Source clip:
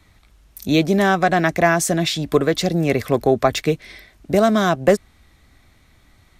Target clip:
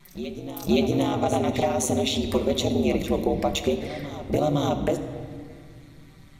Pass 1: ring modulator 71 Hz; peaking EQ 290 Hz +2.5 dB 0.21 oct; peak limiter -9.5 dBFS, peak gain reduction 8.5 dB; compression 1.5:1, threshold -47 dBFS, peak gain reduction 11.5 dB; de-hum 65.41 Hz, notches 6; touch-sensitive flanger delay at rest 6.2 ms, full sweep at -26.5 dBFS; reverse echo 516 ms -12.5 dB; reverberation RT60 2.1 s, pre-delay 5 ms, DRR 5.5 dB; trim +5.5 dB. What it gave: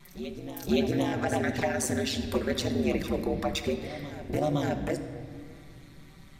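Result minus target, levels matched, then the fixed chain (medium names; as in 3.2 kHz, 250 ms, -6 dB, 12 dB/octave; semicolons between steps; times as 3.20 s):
compression: peak gain reduction +4 dB
ring modulator 71 Hz; peaking EQ 290 Hz +2.5 dB 0.21 oct; peak limiter -9.5 dBFS, peak gain reduction 8.5 dB; compression 1.5:1, threshold -35 dBFS, peak gain reduction 7.5 dB; de-hum 65.41 Hz, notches 6; touch-sensitive flanger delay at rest 6.2 ms, full sweep at -26.5 dBFS; reverse echo 516 ms -12.5 dB; reverberation RT60 2.1 s, pre-delay 5 ms, DRR 5.5 dB; trim +5.5 dB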